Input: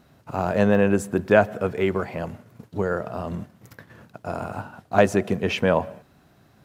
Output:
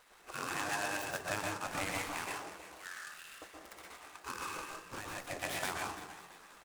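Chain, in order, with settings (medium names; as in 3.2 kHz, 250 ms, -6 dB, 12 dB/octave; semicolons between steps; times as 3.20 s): 1.65–2.08 s: jump at every zero crossing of -31.5 dBFS; low-pass 5.7 kHz 12 dB/octave; spectral gate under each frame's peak -15 dB weak; 2.69–3.42 s: Bessel high-pass 2.7 kHz, order 8; compression 8:1, threshold -38 dBFS, peak gain reduction 17.5 dB; 4.57–5.24 s: valve stage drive 41 dB, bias 0.7; frequency-shifting echo 336 ms, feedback 44%, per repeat +57 Hz, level -14 dB; reverberation RT60 0.40 s, pre-delay 117 ms, DRR -1 dB; delay time shaken by noise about 5.4 kHz, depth 0.042 ms; trim +2 dB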